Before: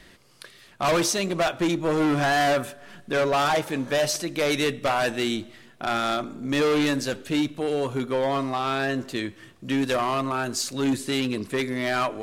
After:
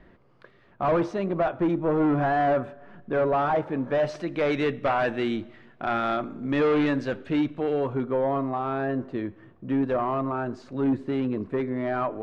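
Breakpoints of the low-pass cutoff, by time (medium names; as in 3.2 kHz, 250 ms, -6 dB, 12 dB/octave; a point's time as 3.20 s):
3.81 s 1.2 kHz
4.26 s 2 kHz
7.68 s 2 kHz
8.19 s 1.1 kHz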